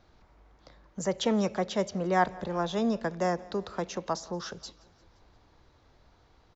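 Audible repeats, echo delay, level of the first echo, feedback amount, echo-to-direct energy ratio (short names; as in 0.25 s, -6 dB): 3, 0.174 s, -23.0 dB, 58%, -21.5 dB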